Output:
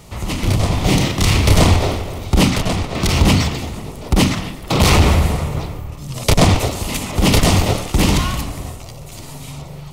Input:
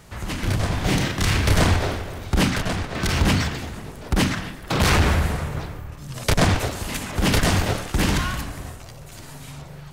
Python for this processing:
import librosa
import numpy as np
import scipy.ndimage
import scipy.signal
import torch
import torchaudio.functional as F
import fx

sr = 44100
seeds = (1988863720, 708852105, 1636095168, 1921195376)

y = fx.peak_eq(x, sr, hz=1600.0, db=-14.0, octaves=0.35)
y = y * 10.0 ** (6.5 / 20.0)